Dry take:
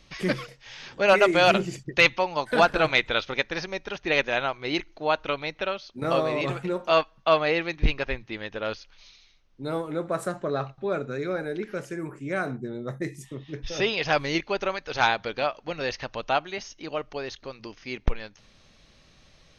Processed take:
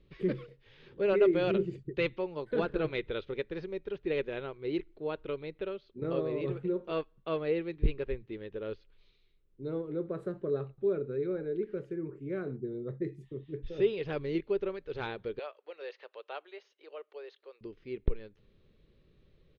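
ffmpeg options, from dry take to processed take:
-filter_complex "[0:a]asettb=1/sr,asplit=3[s0][s1][s2];[s0]atrim=end=15.394[s3];[s1]atrim=start=15.39:end=17.61,asetpts=PTS-STARTPTS,afade=t=in:d=0.004:c=qsin,afade=t=out:st=2.216:d=0.004:c=qsin,highpass=f=550:w=0.5412,highpass=f=550:w=1.3066[s4];[s2]atrim=start=17.606[s5];[s3][s4]acrossfade=d=0.004:c1=hsin:c2=qsin[s6];[s6][s5]acrossfade=d=0.004:c1=qsin:c2=hsin,firequalizer=gain_entry='entry(170,0);entry(260,-4);entry(400,7);entry(690,-15);entry(1100,-12);entry(3800,-13);entry(5600,-28)':delay=0.05:min_phase=1,volume=0.562"

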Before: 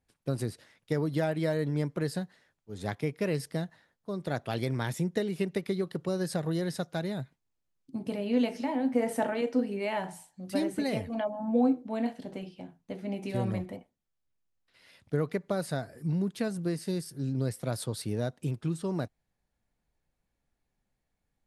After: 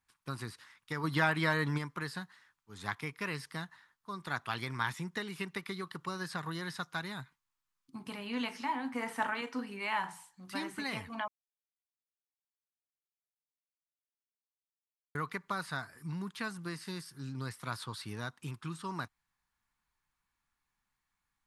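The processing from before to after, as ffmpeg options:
-filter_complex "[0:a]asplit=3[s0][s1][s2];[s0]afade=t=out:st=1.03:d=0.02[s3];[s1]acontrast=90,afade=t=in:st=1.03:d=0.02,afade=t=out:st=1.77:d=0.02[s4];[s2]afade=t=in:st=1.77:d=0.02[s5];[s3][s4][s5]amix=inputs=3:normalize=0,asplit=3[s6][s7][s8];[s6]atrim=end=11.28,asetpts=PTS-STARTPTS,afade=t=out:st=11.276:d=0.004:c=hsin[s9];[s7]atrim=start=11.28:end=15.15,asetpts=PTS-STARTPTS,volume=0[s10];[s8]atrim=start=15.15,asetpts=PTS-STARTPTS,afade=t=in:d=0.004:c=hsin[s11];[s9][s10][s11]concat=n=3:v=0:a=1,acrossover=split=4500[s12][s13];[s13]acompressor=threshold=0.00251:ratio=4:attack=1:release=60[s14];[s12][s14]amix=inputs=2:normalize=0,lowshelf=f=790:t=q:w=3:g=-10,volume=1.12"

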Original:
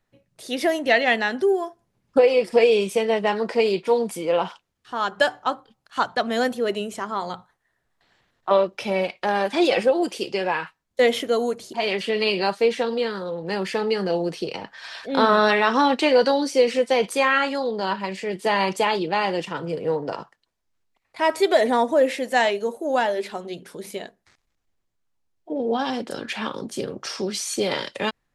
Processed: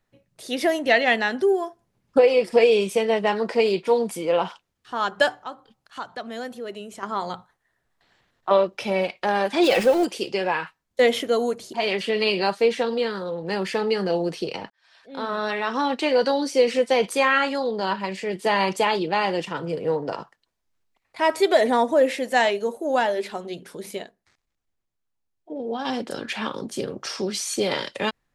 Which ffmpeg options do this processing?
-filter_complex "[0:a]asettb=1/sr,asplit=3[s0][s1][s2];[s0]atrim=end=5.344[s3];[s1]atrim=start=5.34:end=7.03,asetpts=PTS-STARTPTS,afade=t=in:d=0.004:c=qsin,afade=t=out:st=1.686:d=0.004:c=qsin,acompressor=threshold=0.00398:ratio=1.5:attack=3.2:release=140:knee=1:detection=peak[s4];[s2]atrim=start=7.026[s5];[s3][s4]acrossfade=d=0.004:c1=hsin:c2=qsin[s6];[s6][s5]acrossfade=d=0.004:c1=qsin:c2=hsin,asettb=1/sr,asplit=3[s7][s8][s9];[s7]atrim=end=9.634[s10];[s8]atrim=start=9.63:end=10.05,asetpts=PTS-STARTPTS,afade=t=in:d=0.004:c=qsin,afade=t=out:st=0.416:d=0.004:c=qsin,aeval=exprs='val(0)+0.5*0.0422*sgn(val(0))':c=same[s11];[s9]atrim=start=10.046[s12];[s10][s11]acrossfade=d=0.004:c1=hsin:c2=qsin[s13];[s13][s12]acrossfade=d=0.004:c1=qsin:c2=hsin,asplit=4[s14][s15][s16][s17];[s14]atrim=end=14.7,asetpts=PTS-STARTPTS,afade=t=out:st=14.696:d=0.004:c=hsin[s18];[s15]atrim=start=14.7:end=24.032,asetpts=PTS-STARTPTS,afade=t=in:d=2.05[s19];[s16]atrim=start=24.028:end=25.852,asetpts=PTS-STARTPTS,volume=0.531[s20];[s17]atrim=start=25.848[s21];[s18][s19]concat=n=2:v=0:a=1[s22];[s22][s20]acrossfade=d=0.004:c1=hsin:c2=hsin[s23];[s23][s21]acrossfade=d=0.004:c1=hsin:c2=hsin"

